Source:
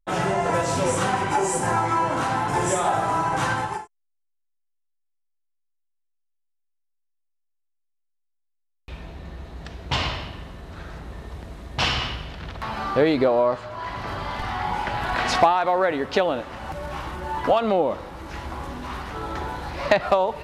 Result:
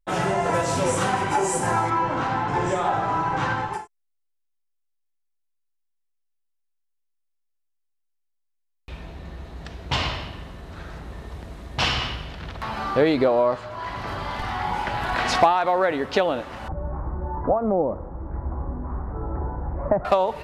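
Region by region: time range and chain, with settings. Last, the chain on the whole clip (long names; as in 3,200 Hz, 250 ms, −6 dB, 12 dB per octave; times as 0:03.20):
0:01.89–0:03.72: notch filter 650 Hz, Q 18 + background noise pink −49 dBFS + high-frequency loss of the air 140 metres
0:16.68–0:20.05: Gaussian smoothing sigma 7.9 samples + low-shelf EQ 90 Hz +11.5 dB
whole clip: no processing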